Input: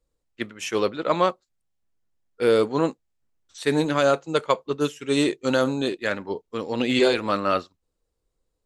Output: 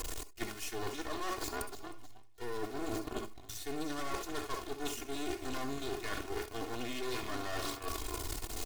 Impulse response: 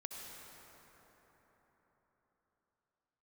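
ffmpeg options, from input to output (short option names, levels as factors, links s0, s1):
-filter_complex "[0:a]aeval=exprs='val(0)+0.5*0.0398*sgn(val(0))':c=same,highshelf=f=8700:g=-5,asplit=6[s0][s1][s2][s3][s4][s5];[s1]adelay=312,afreqshift=-110,volume=0.282[s6];[s2]adelay=624,afreqshift=-220,volume=0.127[s7];[s3]adelay=936,afreqshift=-330,volume=0.0569[s8];[s4]adelay=1248,afreqshift=-440,volume=0.0257[s9];[s5]adelay=1560,afreqshift=-550,volume=0.0116[s10];[s0][s6][s7][s8][s9][s10]amix=inputs=6:normalize=0,aeval=exprs='(tanh(8.91*val(0)+0.6)-tanh(0.6))/8.91':c=same,acrossover=split=810[s11][s12];[s12]acompressor=mode=upward:threshold=0.00447:ratio=2.5[s13];[s11][s13]amix=inputs=2:normalize=0,highshelf=f=4100:g=9,aeval=exprs='0.376*(cos(1*acos(clip(val(0)/0.376,-1,1)))-cos(1*PI/2))+0.075*(cos(3*acos(clip(val(0)/0.376,-1,1)))-cos(3*PI/2))+0.00841*(cos(5*acos(clip(val(0)/0.376,-1,1)))-cos(5*PI/2))+0.0075*(cos(7*acos(clip(val(0)/0.376,-1,1)))-cos(7*PI/2))+0.0473*(cos(8*acos(clip(val(0)/0.376,-1,1)))-cos(8*PI/2))':c=same,aecho=1:1:2.8:0.87[s14];[1:a]atrim=start_sample=2205,atrim=end_sample=3528[s15];[s14][s15]afir=irnorm=-1:irlink=0,areverse,acompressor=threshold=0.00794:ratio=12,areverse,volume=2.66"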